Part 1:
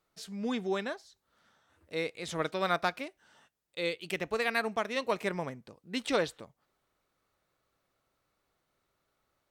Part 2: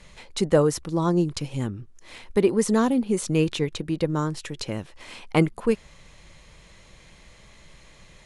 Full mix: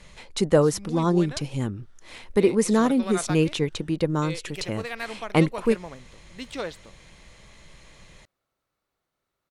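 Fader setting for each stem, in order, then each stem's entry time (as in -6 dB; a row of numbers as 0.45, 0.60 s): -3.5, +0.5 dB; 0.45, 0.00 s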